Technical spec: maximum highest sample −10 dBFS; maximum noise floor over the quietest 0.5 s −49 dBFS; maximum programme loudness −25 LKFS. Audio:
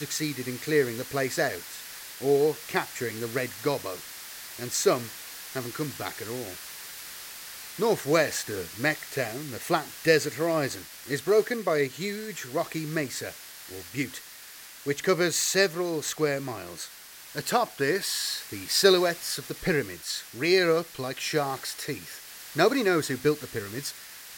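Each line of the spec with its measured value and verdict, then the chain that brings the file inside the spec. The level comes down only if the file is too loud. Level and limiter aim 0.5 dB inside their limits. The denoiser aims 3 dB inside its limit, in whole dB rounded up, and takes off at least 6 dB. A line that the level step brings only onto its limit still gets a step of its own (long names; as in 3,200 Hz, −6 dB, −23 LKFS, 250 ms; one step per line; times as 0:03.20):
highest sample −8.0 dBFS: out of spec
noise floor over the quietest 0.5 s −46 dBFS: out of spec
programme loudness −27.5 LKFS: in spec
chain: broadband denoise 6 dB, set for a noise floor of −46 dBFS
brickwall limiter −10.5 dBFS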